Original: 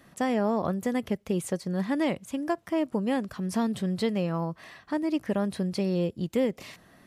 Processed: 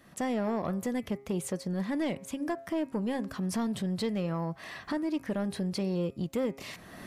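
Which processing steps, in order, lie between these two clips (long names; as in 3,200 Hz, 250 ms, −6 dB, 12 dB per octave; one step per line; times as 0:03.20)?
camcorder AGC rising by 26 dB per second
soft clipping −20 dBFS, distortion −18 dB
hum removal 135.2 Hz, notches 19
level −2.5 dB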